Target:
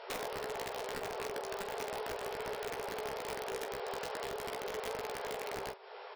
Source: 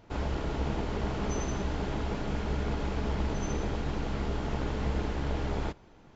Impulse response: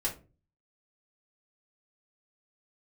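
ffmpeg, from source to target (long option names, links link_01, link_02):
-filter_complex "[0:a]acrossover=split=1000[link_01][link_02];[link_02]alimiter=level_in=19dB:limit=-24dB:level=0:latency=1:release=29,volume=-19dB[link_03];[link_01][link_03]amix=inputs=2:normalize=0,afftfilt=real='re*between(b*sr/4096,380,5600)':imag='im*between(b*sr/4096,380,5600)':win_size=4096:overlap=0.75,acompressor=threshold=-49dB:ratio=16,aeval=exprs='(mod(158*val(0)+1,2)-1)/158':channel_layout=same,aecho=1:1:16|46:0.501|0.282,volume=12dB"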